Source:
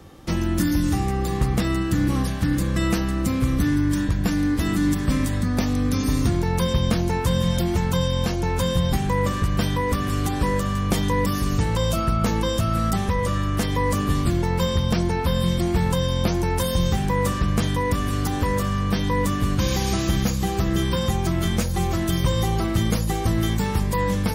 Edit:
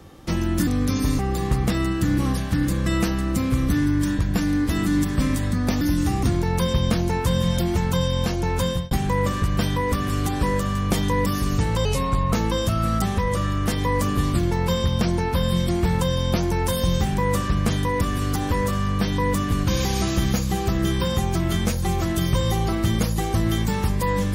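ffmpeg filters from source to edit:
-filter_complex "[0:a]asplit=8[s0][s1][s2][s3][s4][s5][s6][s7];[s0]atrim=end=0.672[s8];[s1]atrim=start=5.708:end=6.232[s9];[s2]atrim=start=1.088:end=5.712[s10];[s3]atrim=start=0.668:end=1.092[s11];[s4]atrim=start=6.228:end=8.91,asetpts=PTS-STARTPTS,afade=t=out:st=2.372:d=0.31:c=qsin[s12];[s5]atrim=start=8.91:end=11.854,asetpts=PTS-STARTPTS,afade=t=in:d=0.004:c=hsin[s13];[s6]atrim=start=11.85:end=12.24,asetpts=PTS-STARTPTS,asetrate=36162,aresample=44100,atrim=end_sample=20974,asetpts=PTS-STARTPTS[s14];[s7]atrim=start=12.236[s15];[s8][s9]acrossfade=d=0.004:c1=hsin:c2=hsin[s16];[s16][s10]acrossfade=d=0.004:c1=hsin:c2=hsin[s17];[s17][s11]acrossfade=d=0.004:c1=hsin:c2=hsin[s18];[s12][s13]concat=n=2:v=0:a=1[s19];[s18][s19]acrossfade=d=0.004:c1=hsin:c2=hsin[s20];[s20][s14]acrossfade=d=0.004:c1=hsin:c2=hsin[s21];[s21][s15]acrossfade=d=0.004:c1=hsin:c2=hsin"

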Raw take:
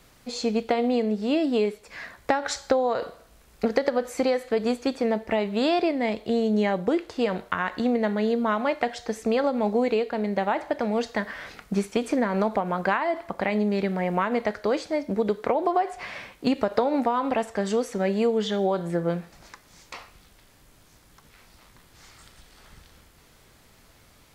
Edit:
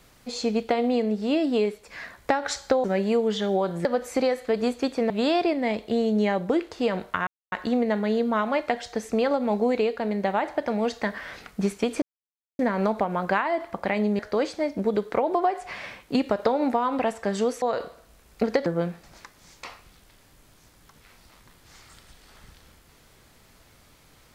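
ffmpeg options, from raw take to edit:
-filter_complex "[0:a]asplit=9[s0][s1][s2][s3][s4][s5][s6][s7][s8];[s0]atrim=end=2.842[s9];[s1]atrim=start=17.938:end=18.952[s10];[s2]atrim=start=3.878:end=5.132[s11];[s3]atrim=start=5.478:end=7.65,asetpts=PTS-STARTPTS,afade=t=out:st=2.168:d=0.004:c=hsin,apad=pad_dur=0.25[s12];[s4]atrim=start=7.65:end=12.15,asetpts=PTS-STARTPTS,afade=t=in:d=0.004:c=hsin,afade=t=out:st=4.496:d=0.004:c=hsin,apad=pad_dur=0.57[s13];[s5]atrim=start=12.15:end=13.752,asetpts=PTS-STARTPTS,afade=t=in:d=0.004:c=hsin[s14];[s6]atrim=start=14.508:end=17.942[s15];[s7]atrim=start=2.838:end=3.882[s16];[s8]atrim=start=18.948[s17];[s9][s10]acrossfade=d=0.004:c1=hsin:c2=hsin[s18];[s18][s11]acrossfade=d=0.004:c1=hsin:c2=hsin[s19];[s12][s13][s14]concat=n=3:v=0:a=1[s20];[s19][s20]acrossfade=d=0.004:c1=hsin:c2=hsin[s21];[s21][s15]acrossfade=d=0.004:c1=hsin:c2=hsin[s22];[s22][s16]acrossfade=d=0.004:c1=hsin:c2=hsin[s23];[s23][s17]acrossfade=d=0.004:c1=hsin:c2=hsin"

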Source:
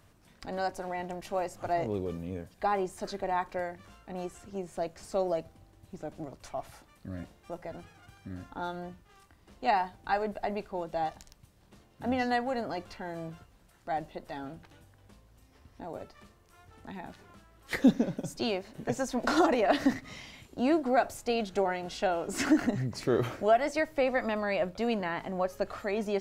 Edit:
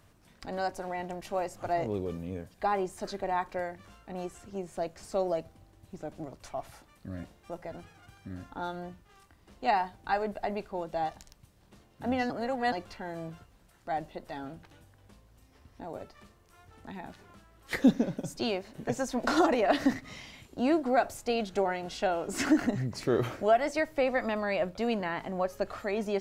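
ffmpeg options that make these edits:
-filter_complex "[0:a]asplit=3[s0][s1][s2];[s0]atrim=end=12.302[s3];[s1]atrim=start=12.298:end=12.722,asetpts=PTS-STARTPTS,areverse[s4];[s2]atrim=start=12.718[s5];[s3][s4]acrossfade=d=0.004:c1=hsin:c2=hsin[s6];[s6][s5]acrossfade=d=0.004:c1=hsin:c2=hsin"

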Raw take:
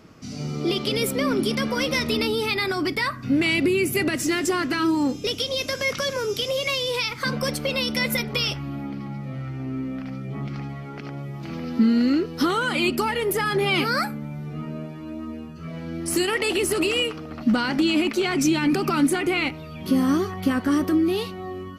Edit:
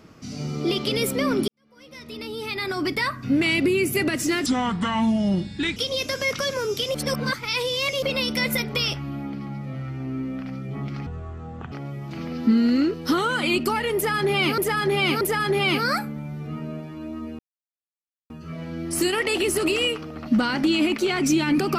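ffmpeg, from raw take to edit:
-filter_complex "[0:a]asplit=11[s0][s1][s2][s3][s4][s5][s6][s7][s8][s9][s10];[s0]atrim=end=1.48,asetpts=PTS-STARTPTS,afade=t=out:st=1.476:d=0.004:c=hsin[s11];[s1]atrim=start=1.48:end=4.464,asetpts=PTS-STARTPTS,afade=t=in:d=1.42:c=qua[s12];[s2]atrim=start=4.46:end=5.36,asetpts=PTS-STARTPTS,asetrate=30429,aresample=44100[s13];[s3]atrim=start=5.356:end=6.542[s14];[s4]atrim=start=6.538:end=7.622,asetpts=PTS-STARTPTS,areverse[s15];[s5]atrim=start=7.618:end=10.664[s16];[s6]atrim=start=10.66:end=11.04,asetpts=PTS-STARTPTS,asetrate=25578,aresample=44100,atrim=end_sample=28893,asetpts=PTS-STARTPTS[s17];[s7]atrim=start=11.036:end=13.902[s18];[s8]atrim=start=13.268:end=13.902[s19];[s9]atrim=start=13.268:end=15.45,asetpts=PTS-STARTPTS,afade=t=out:st=2.178:d=0.004:c=hsin,apad=pad_dur=0.91[s20];[s10]atrim=start=15.45,asetpts=PTS-STARTPTS,afade=t=in:d=0.004:c=hsin[s21];[s11][s12]concat=n=2:v=0:a=1[s22];[s22][s13]acrossfade=d=0.004:c1=hsin:c2=hsin[s23];[s23][s14]acrossfade=d=0.004:c1=hsin:c2=hsin[s24];[s24][s15]acrossfade=d=0.004:c1=hsin:c2=hsin[s25];[s25][s16]acrossfade=d=0.004:c1=hsin:c2=hsin[s26];[s26][s17]acrossfade=d=0.004:c1=hsin:c2=hsin[s27];[s27][s18]acrossfade=d=0.004:c1=hsin:c2=hsin[s28];[s28][s19]acrossfade=d=0.004:c1=hsin:c2=hsin[s29];[s20][s21]concat=n=2:v=0:a=1[s30];[s29][s30]acrossfade=d=0.004:c1=hsin:c2=hsin"

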